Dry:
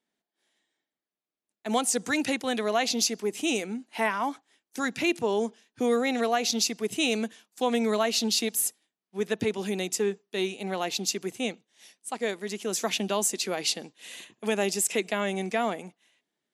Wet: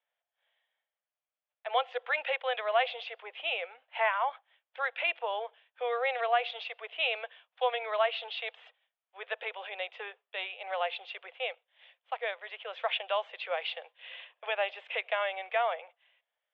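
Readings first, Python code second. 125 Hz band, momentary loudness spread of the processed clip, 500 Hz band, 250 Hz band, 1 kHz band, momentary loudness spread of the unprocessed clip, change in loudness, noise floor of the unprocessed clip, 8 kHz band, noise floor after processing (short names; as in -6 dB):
under -40 dB, 12 LU, -5.5 dB, under -35 dB, -0.5 dB, 10 LU, -5.0 dB, under -85 dBFS, under -40 dB, under -85 dBFS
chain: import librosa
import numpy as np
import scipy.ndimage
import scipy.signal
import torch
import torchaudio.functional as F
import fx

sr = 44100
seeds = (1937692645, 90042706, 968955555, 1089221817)

y = scipy.signal.sosfilt(scipy.signal.cheby1(5, 1.0, [510.0, 3400.0], 'bandpass', fs=sr, output='sos'), x)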